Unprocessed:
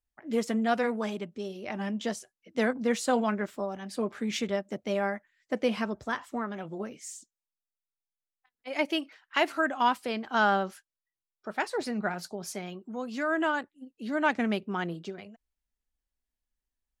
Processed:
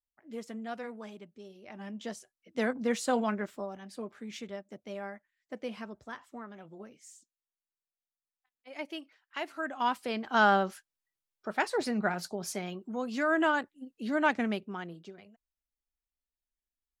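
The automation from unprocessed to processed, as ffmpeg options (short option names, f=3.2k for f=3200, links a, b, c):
-af "volume=9.5dB,afade=t=in:st=1.65:d=1.14:silence=0.316228,afade=t=out:st=3.3:d=0.83:silence=0.375837,afade=t=in:st=9.51:d=0.93:silence=0.251189,afade=t=out:st=14.06:d=0.79:silence=0.316228"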